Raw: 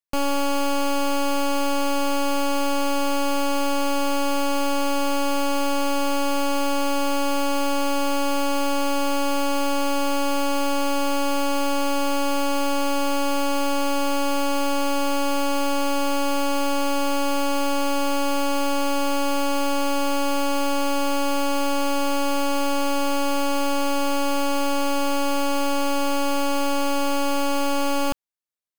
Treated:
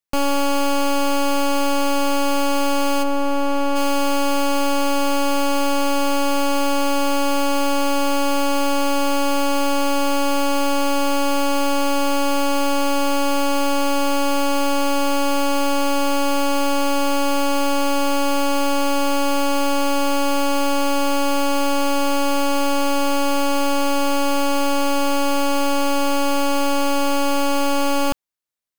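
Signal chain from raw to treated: 3.02–3.75 high shelf 2000 Hz -> 3600 Hz -11.5 dB; gain +3.5 dB

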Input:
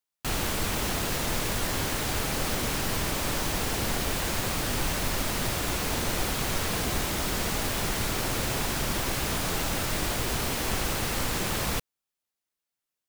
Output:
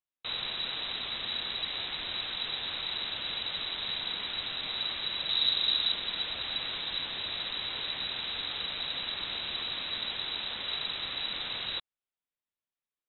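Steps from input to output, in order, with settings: 5.29–5.92 low shelf 420 Hz +10 dB; inverted band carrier 3900 Hz; gain -7 dB

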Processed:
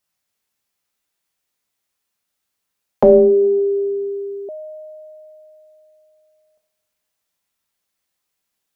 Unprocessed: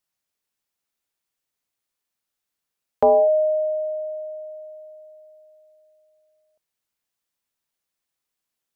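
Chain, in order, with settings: two-slope reverb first 0.64 s, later 2.1 s, from -22 dB, DRR 1.5 dB; 3.03–4.49 frequency shift -220 Hz; gain +4 dB

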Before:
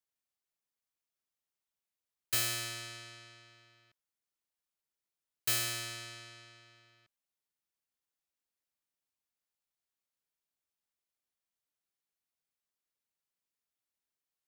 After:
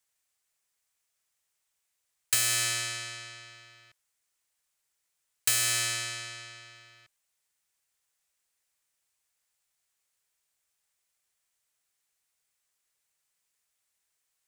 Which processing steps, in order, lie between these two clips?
compressor 6:1, threshold -34 dBFS, peak gain reduction 7.5 dB; ten-band EQ 250 Hz -9 dB, 2000 Hz +4 dB, 8000 Hz +8 dB; gain +8 dB

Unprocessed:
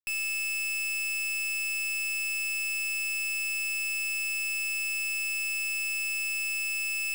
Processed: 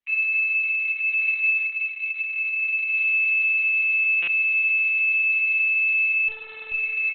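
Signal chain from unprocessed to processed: steep high-pass 1200 Hz 36 dB/oct; bell 16000 Hz +3.5 dB 0.72 oct; fixed phaser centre 2300 Hz, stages 8; 1.11–1.64 modulation noise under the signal 33 dB; 6.28–6.72 wrapped overs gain 36 dB; doubler 21 ms -6.5 dB; tape echo 0.262 s, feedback 78%, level -17.5 dB, low-pass 1900 Hz; reverb RT60 1.3 s, pre-delay 68 ms, DRR 10 dB; stuck buffer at 4.22, samples 256, times 8; gain +7 dB; Opus 8 kbps 48000 Hz

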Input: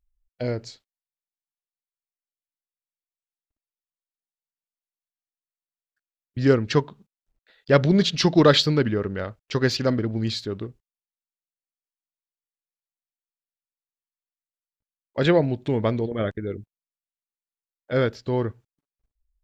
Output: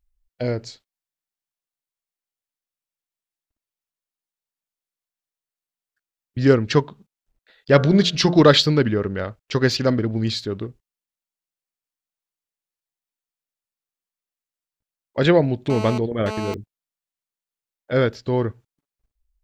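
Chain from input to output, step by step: 7.73–8.42 de-hum 88.11 Hz, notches 18; 15.7–16.54 GSM buzz -32 dBFS; gain +3 dB

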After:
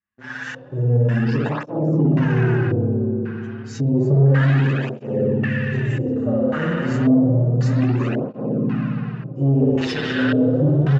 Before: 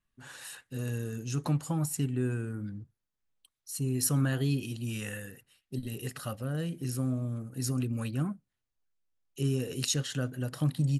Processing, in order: nonlinear frequency compression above 3100 Hz 1.5:1; doubler 27 ms -12 dB; spring tank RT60 3.4 s, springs 58 ms, chirp 75 ms, DRR -6 dB; sample leveller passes 3; HPF 120 Hz; tone controls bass +4 dB, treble +15 dB; LFO low-pass square 0.92 Hz 530–1800 Hz; LPF 9000 Hz 12 dB/oct; tape flanging out of phase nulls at 0.3 Hz, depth 7.5 ms

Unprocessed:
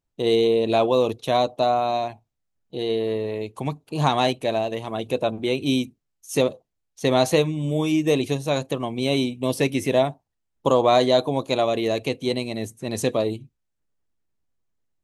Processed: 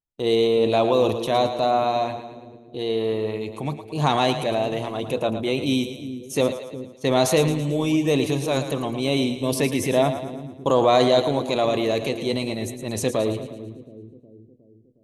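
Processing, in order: gate -40 dBFS, range -13 dB; transient shaper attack -2 dB, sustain +5 dB; on a send: split-band echo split 410 Hz, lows 0.362 s, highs 0.111 s, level -10 dB

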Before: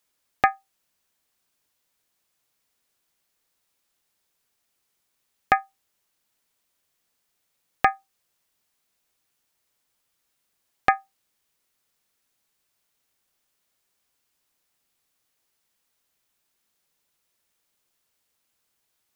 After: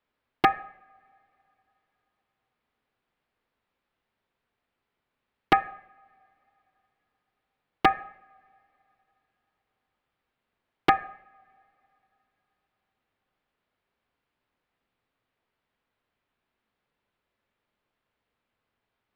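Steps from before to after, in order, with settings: two-slope reverb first 0.65 s, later 3.4 s, from -26 dB, DRR 12 dB; wow and flutter 15 cents; wrapped overs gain 9 dB; air absorption 450 m; gain +3.5 dB

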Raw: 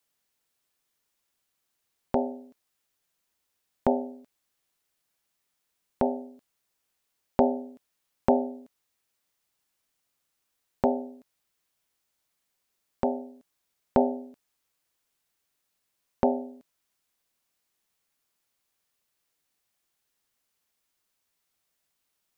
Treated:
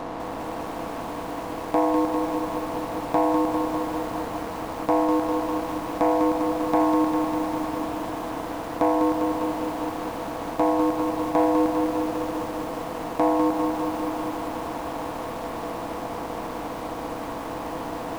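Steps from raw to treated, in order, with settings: per-bin compression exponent 0.2; sample leveller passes 2; on a send at -22.5 dB: reverb, pre-delay 4 ms; on the sum: varispeed +23%; lo-fi delay 0.2 s, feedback 80%, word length 6-bit, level -5 dB; gain -7.5 dB

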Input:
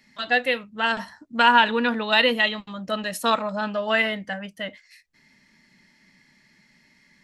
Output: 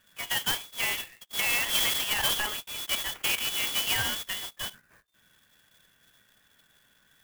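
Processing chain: sample sorter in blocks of 8 samples; air absorption 170 m; limiter -16 dBFS, peak gain reduction 10 dB; inverted band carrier 3600 Hz; clock jitter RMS 0.044 ms; gain -1.5 dB

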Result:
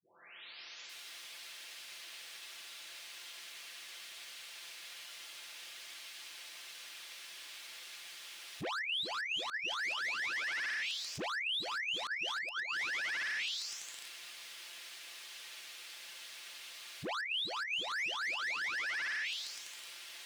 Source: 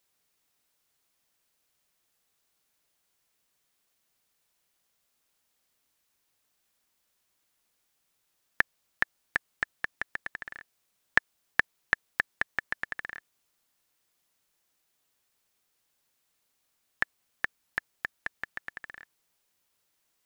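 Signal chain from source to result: spectral delay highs late, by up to 0.894 s; dynamic EQ 1300 Hz, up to -6 dB, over -44 dBFS, Q 1.2; flipped gate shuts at -29 dBFS, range -28 dB; overdrive pedal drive 35 dB, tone 2700 Hz, clips at -24.5 dBFS; limiter -35 dBFS, peak gain reduction 7.5 dB; weighting filter D; compressor 5:1, threshold -35 dBFS, peak gain reduction 8 dB

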